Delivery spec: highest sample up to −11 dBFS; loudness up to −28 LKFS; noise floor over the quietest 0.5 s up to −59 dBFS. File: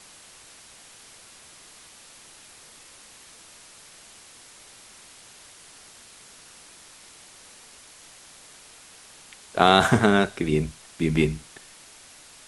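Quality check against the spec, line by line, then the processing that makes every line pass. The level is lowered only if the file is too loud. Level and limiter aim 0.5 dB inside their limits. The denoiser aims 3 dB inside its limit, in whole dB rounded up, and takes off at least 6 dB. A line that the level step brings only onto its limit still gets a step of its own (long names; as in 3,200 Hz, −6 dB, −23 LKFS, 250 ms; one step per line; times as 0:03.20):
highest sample −1.5 dBFS: out of spec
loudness −22.0 LKFS: out of spec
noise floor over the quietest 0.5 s −49 dBFS: out of spec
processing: broadband denoise 7 dB, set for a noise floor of −49 dBFS
level −6.5 dB
brickwall limiter −11.5 dBFS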